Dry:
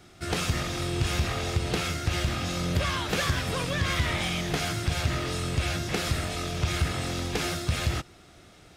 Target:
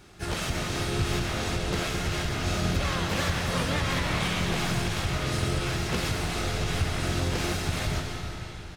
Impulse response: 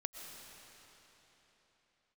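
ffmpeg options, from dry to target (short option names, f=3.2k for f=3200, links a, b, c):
-filter_complex "[0:a]alimiter=limit=-19dB:level=0:latency=1:release=276,asplit=3[a][b][c];[b]asetrate=22050,aresample=44100,atempo=2,volume=-3dB[d];[c]asetrate=52444,aresample=44100,atempo=0.840896,volume=-4dB[e];[a][d][e]amix=inputs=3:normalize=0[f];[1:a]atrim=start_sample=2205,asetrate=48510,aresample=44100[g];[f][g]afir=irnorm=-1:irlink=0,volume=2dB"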